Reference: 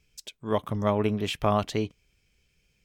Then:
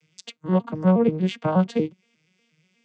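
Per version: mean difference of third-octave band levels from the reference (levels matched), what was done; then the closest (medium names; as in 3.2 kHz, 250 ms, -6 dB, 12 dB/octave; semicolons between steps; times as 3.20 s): 8.5 dB: vocoder on a broken chord minor triad, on D#3, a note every 119 ms; tape noise reduction on one side only encoder only; trim +6.5 dB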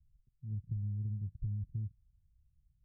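18.0 dB: inverse Chebyshev low-pass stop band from 750 Hz, stop band 80 dB; compression, threshold -36 dBFS, peak gain reduction 6.5 dB; trim +2 dB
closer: first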